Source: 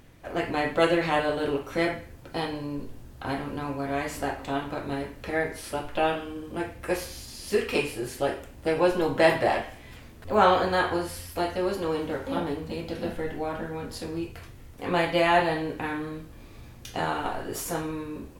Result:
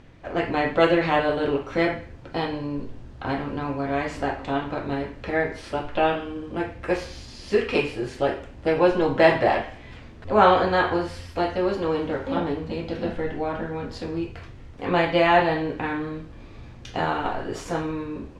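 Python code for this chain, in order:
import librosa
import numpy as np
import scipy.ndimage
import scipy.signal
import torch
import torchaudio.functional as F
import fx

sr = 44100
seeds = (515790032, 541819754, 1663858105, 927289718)

y = fx.air_absorb(x, sr, metres=120.0)
y = y * 10.0 ** (4.0 / 20.0)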